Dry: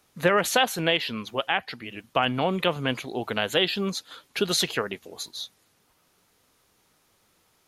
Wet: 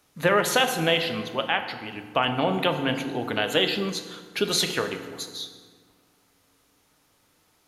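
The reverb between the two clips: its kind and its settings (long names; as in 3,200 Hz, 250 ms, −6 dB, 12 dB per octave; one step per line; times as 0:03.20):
feedback delay network reverb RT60 1.7 s, low-frequency decay 1.3×, high-frequency decay 0.6×, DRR 6 dB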